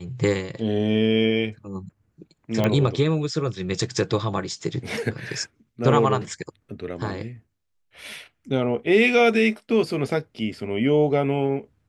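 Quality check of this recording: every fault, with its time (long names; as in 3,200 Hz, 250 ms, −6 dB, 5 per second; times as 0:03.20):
0:02.64: click −10 dBFS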